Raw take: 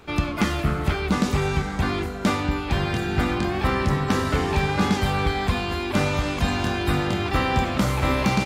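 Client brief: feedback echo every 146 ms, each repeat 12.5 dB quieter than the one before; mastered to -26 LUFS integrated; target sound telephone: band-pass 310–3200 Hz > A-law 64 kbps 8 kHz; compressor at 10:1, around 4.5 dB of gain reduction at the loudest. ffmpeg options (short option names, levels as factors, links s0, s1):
-af "acompressor=threshold=0.0891:ratio=10,highpass=310,lowpass=3200,aecho=1:1:146|292|438:0.237|0.0569|0.0137,volume=1.5" -ar 8000 -c:a pcm_alaw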